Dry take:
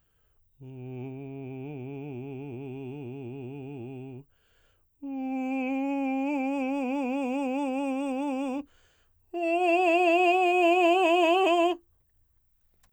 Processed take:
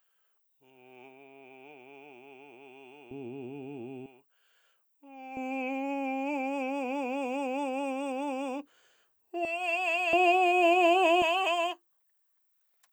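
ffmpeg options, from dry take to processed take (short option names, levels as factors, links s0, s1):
-af "asetnsamples=n=441:p=0,asendcmd='3.11 highpass f 210;4.06 highpass f 770;5.37 highpass f 360;9.45 highpass f 1100;10.13 highpass f 370;11.22 highpass f 850',highpass=770"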